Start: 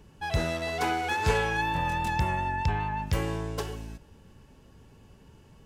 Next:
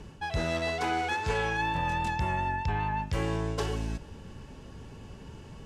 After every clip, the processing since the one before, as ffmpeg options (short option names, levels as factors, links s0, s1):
-af "lowpass=8600,areverse,acompressor=threshold=0.0158:ratio=5,areverse,volume=2.66"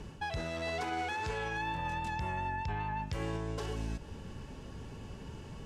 -af "alimiter=level_in=1.5:limit=0.0631:level=0:latency=1:release=154,volume=0.668"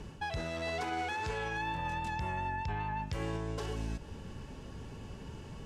-af anull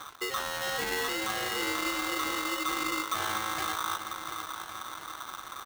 -filter_complex "[0:a]asplit=2[s0][s1];[s1]adelay=700,lowpass=f=1800:p=1,volume=0.398,asplit=2[s2][s3];[s3]adelay=700,lowpass=f=1800:p=1,volume=0.55,asplit=2[s4][s5];[s5]adelay=700,lowpass=f=1800:p=1,volume=0.55,asplit=2[s6][s7];[s7]adelay=700,lowpass=f=1800:p=1,volume=0.55,asplit=2[s8][s9];[s9]adelay=700,lowpass=f=1800:p=1,volume=0.55,asplit=2[s10][s11];[s11]adelay=700,lowpass=f=1800:p=1,volume=0.55,asplit=2[s12][s13];[s13]adelay=700,lowpass=f=1800:p=1,volume=0.55[s14];[s0][s2][s4][s6][s8][s10][s12][s14]amix=inputs=8:normalize=0,aeval=exprs='sgn(val(0))*max(abs(val(0))-0.00237,0)':c=same,aeval=exprs='val(0)*sgn(sin(2*PI*1200*n/s))':c=same,volume=1.68"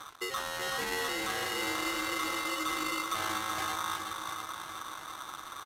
-filter_complex "[0:a]asplit=2[s0][s1];[s1]aecho=0:1:376:0.447[s2];[s0][s2]amix=inputs=2:normalize=0,aresample=32000,aresample=44100,volume=0.75"